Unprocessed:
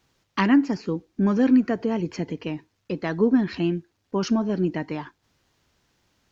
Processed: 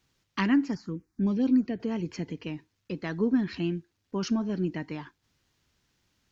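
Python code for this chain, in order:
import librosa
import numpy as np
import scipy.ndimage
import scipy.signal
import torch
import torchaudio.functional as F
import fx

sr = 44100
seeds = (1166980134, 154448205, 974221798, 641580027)

y = fx.peak_eq(x, sr, hz=660.0, db=-6.0, octaves=1.9)
y = fx.env_phaser(y, sr, low_hz=390.0, high_hz=3000.0, full_db=-15.0, at=(0.75, 1.8))
y = y * librosa.db_to_amplitude(-3.5)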